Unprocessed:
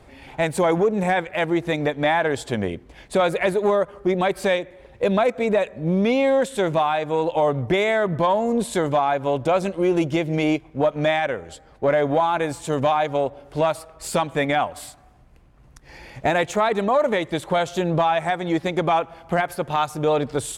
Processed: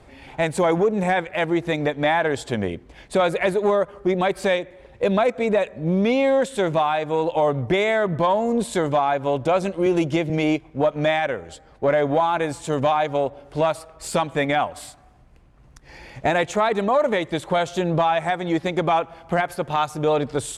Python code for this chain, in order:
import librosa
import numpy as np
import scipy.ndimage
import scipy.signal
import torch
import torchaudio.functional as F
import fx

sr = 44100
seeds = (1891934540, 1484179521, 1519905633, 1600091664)

y = scipy.signal.sosfilt(scipy.signal.butter(2, 11000.0, 'lowpass', fs=sr, output='sos'), x)
y = fx.band_squash(y, sr, depth_pct=40, at=(9.86, 10.3))